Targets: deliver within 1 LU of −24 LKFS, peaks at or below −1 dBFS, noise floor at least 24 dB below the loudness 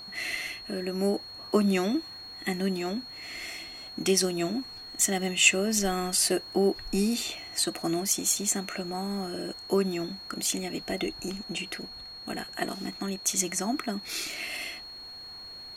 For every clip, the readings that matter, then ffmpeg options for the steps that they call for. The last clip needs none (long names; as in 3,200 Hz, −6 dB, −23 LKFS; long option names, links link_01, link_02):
interfering tone 4,300 Hz; level of the tone −41 dBFS; integrated loudness −28.5 LKFS; sample peak −7.0 dBFS; target loudness −24.0 LKFS
→ -af "bandreject=frequency=4300:width=30"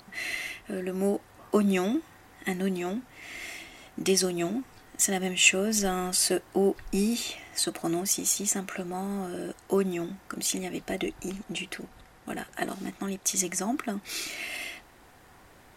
interfering tone none found; integrated loudness −29.0 LKFS; sample peak −7.0 dBFS; target loudness −24.0 LKFS
→ -af "volume=5dB"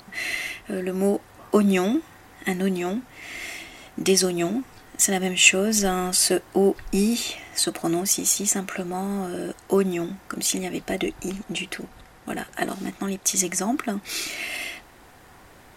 integrated loudness −24.0 LKFS; sample peak −2.0 dBFS; background noise floor −50 dBFS